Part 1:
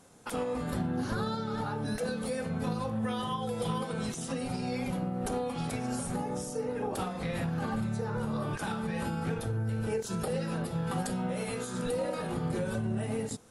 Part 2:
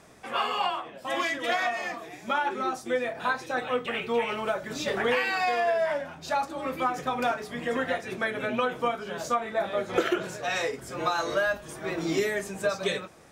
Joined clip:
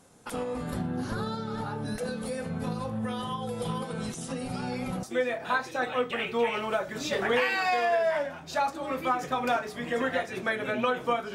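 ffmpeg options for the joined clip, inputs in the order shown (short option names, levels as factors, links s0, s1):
-filter_complex "[1:a]asplit=2[s0][s1];[0:a]apad=whole_dur=11.34,atrim=end=11.34,atrim=end=5.032[s2];[s1]atrim=start=2.778:end=9.09[s3];[s0]atrim=start=2.28:end=2.78,asetpts=PTS-STARTPTS,volume=0.158,afade=t=in:d=0.004:c=hsin,afade=t=out:st=0.496:d=0.004:c=hsin,adelay=199773S[s4];[s2][s3]acrossfade=d=0.004:c1=hsin:c2=hsin[s5];[s5][s4]amix=inputs=2:normalize=0"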